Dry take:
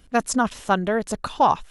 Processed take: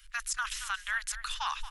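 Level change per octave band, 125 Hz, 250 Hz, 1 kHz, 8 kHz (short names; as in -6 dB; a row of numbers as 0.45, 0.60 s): under -20 dB, under -40 dB, -16.0 dB, -4.0 dB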